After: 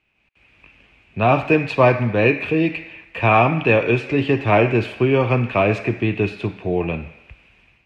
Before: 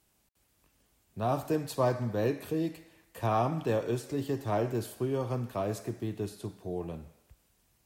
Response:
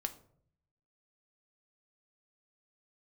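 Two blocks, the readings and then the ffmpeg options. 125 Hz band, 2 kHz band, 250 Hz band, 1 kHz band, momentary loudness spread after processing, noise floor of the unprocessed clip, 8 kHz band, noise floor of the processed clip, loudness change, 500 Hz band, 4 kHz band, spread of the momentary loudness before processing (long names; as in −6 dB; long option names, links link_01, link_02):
+13.0 dB, +24.0 dB, +13.0 dB, +14.0 dB, 8 LU, −71 dBFS, can't be measured, −61 dBFS, +14.0 dB, +13.5 dB, +14.0 dB, 9 LU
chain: -af "lowpass=frequency=2500:width_type=q:width=8.6,dynaudnorm=framelen=140:gausssize=5:maxgain=14.5dB"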